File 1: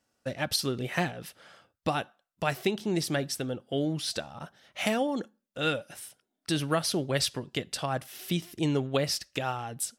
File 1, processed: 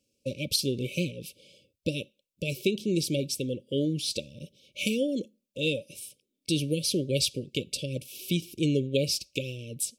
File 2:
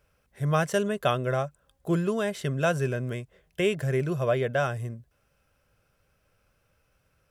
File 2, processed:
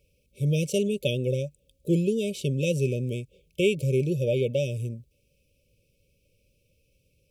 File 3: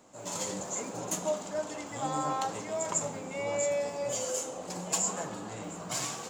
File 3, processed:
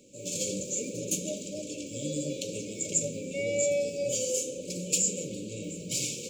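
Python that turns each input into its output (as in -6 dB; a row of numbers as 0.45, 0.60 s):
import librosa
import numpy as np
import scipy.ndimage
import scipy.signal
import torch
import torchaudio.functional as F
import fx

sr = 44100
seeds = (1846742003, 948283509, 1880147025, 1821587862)

y = fx.brickwall_bandstop(x, sr, low_hz=600.0, high_hz=2200.0)
y = y * 10.0 ** (-12 / 20.0) / np.max(np.abs(y))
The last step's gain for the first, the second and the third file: +2.0, +2.5, +3.5 dB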